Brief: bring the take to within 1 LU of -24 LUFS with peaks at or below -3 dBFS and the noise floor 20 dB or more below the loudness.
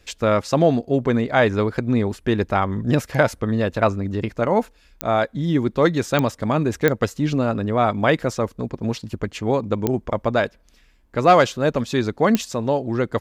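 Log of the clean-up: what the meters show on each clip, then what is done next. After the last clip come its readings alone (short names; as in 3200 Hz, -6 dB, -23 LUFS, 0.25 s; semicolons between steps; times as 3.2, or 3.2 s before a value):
clicks 5; loudness -21.0 LUFS; peak -2.5 dBFS; loudness target -24.0 LUFS
-> de-click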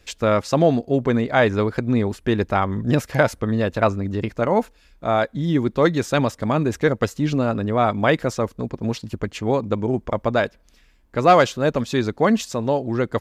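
clicks 0; loudness -21.0 LUFS; peak -2.5 dBFS; loudness target -24.0 LUFS
-> gain -3 dB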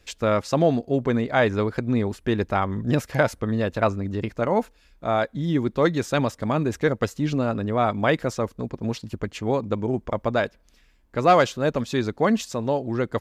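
loudness -24.0 LUFS; peak -5.5 dBFS; noise floor -59 dBFS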